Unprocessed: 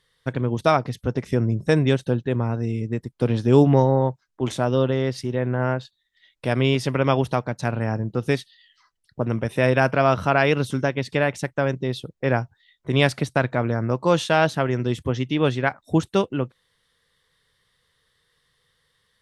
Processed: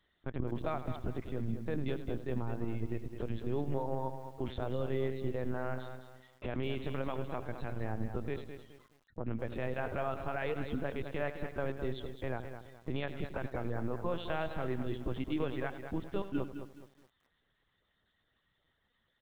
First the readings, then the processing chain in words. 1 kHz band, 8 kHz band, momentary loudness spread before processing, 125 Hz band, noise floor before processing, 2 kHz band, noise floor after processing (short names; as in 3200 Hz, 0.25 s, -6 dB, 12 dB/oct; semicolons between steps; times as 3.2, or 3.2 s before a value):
-16.5 dB, under -25 dB, 9 LU, -16.5 dB, -72 dBFS, -17.5 dB, -78 dBFS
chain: reverb removal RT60 0.78 s; high shelf 2100 Hz -4.5 dB; compressor 10:1, threshold -24 dBFS, peak gain reduction 14 dB; limiter -20.5 dBFS, peak gain reduction 7.5 dB; on a send: feedback echo 93 ms, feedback 34%, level -13 dB; on the sum: LPC vocoder at 8 kHz pitch kept; lo-fi delay 0.211 s, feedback 35%, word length 9-bit, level -9 dB; gain -4.5 dB